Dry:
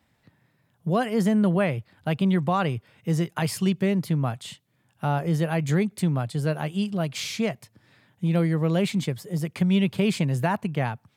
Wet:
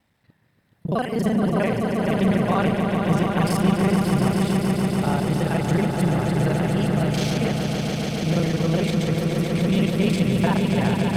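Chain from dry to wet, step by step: local time reversal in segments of 34 ms; notch 7000 Hz, Q 13; on a send: swelling echo 0.143 s, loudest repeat 5, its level -6.5 dB

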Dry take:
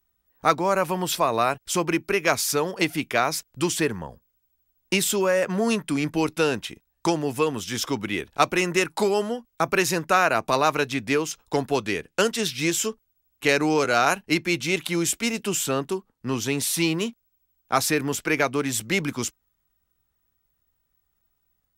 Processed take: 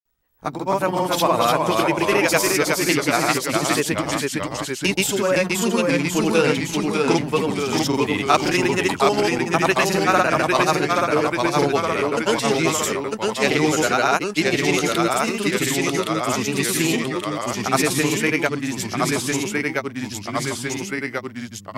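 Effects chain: grains, pitch spread up and down by 0 st; echoes that change speed 0.227 s, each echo -1 st, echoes 3; gain +3 dB

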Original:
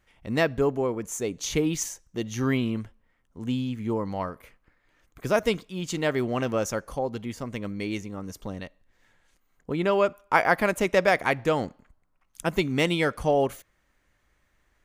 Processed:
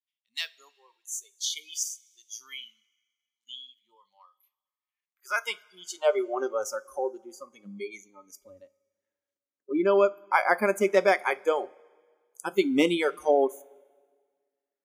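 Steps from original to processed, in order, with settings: spectral noise reduction 27 dB; high-pass sweep 3500 Hz -> 280 Hz, 4.68–6.6; two-slope reverb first 0.23 s, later 1.7 s, from -20 dB, DRR 14 dB; gain -2 dB

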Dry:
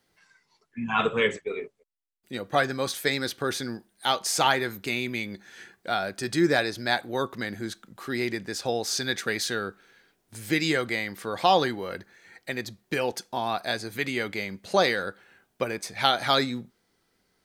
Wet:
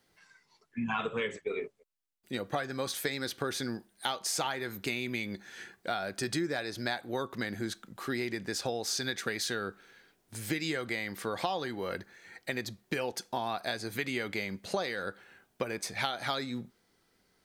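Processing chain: compressor 10:1, threshold -29 dBFS, peak gain reduction 14 dB

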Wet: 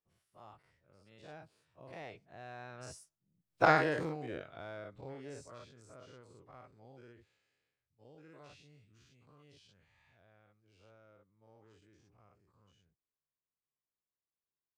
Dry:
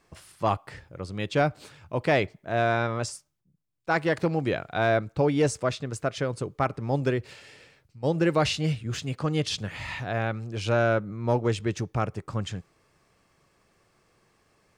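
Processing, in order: spectral dilation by 0.12 s; Doppler pass-by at 3.62, 19 m/s, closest 1.1 m

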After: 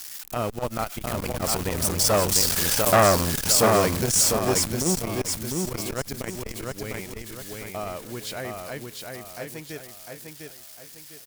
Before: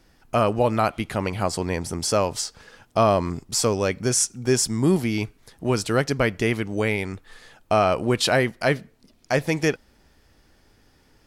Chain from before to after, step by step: switching spikes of -18.5 dBFS; Doppler pass-by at 2.83, 6 m/s, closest 3.5 m; in parallel at -7 dB: Schmitt trigger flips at -28.5 dBFS; on the sum: feedback echo 0.702 s, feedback 37%, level -4.5 dB; core saturation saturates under 1100 Hz; gain +5 dB

